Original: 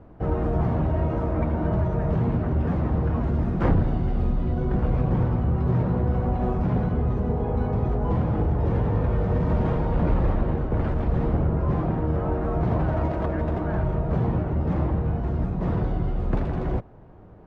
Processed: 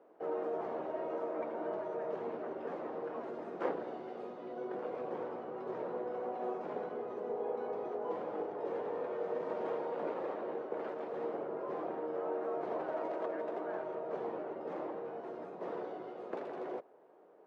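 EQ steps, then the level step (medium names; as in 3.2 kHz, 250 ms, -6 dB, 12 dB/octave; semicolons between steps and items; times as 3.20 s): ladder high-pass 360 Hz, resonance 40%; -2.5 dB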